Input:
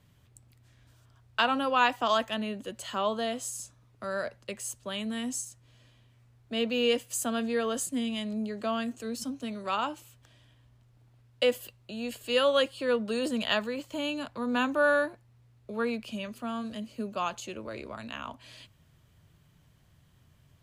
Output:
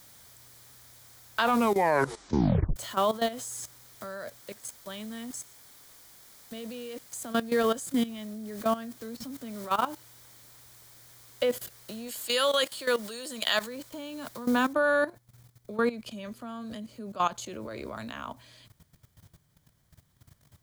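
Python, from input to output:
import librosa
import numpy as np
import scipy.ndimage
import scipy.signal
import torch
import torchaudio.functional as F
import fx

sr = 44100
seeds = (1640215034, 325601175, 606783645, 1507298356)

y = fx.level_steps(x, sr, step_db=18, at=(4.4, 7.34))
y = fx.air_absorb(y, sr, metres=160.0, at=(8.06, 11.51))
y = fx.tilt_eq(y, sr, slope=3.5, at=(12.07, 13.66), fade=0.02)
y = fx.noise_floor_step(y, sr, seeds[0], at_s=14.73, before_db=-50, after_db=-69, tilt_db=0.0)
y = fx.edit(y, sr, fx.tape_stop(start_s=1.42, length_s=1.34), tone=tone)
y = fx.level_steps(y, sr, step_db=15)
y = fx.peak_eq(y, sr, hz=2700.0, db=-10.0, octaves=0.22)
y = y * librosa.db_to_amplitude(6.5)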